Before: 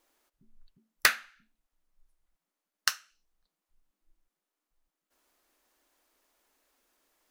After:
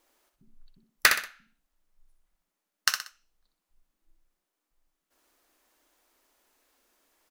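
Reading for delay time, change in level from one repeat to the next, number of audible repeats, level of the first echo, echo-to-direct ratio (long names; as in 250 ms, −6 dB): 62 ms, −9.0 dB, 3, −7.0 dB, −6.5 dB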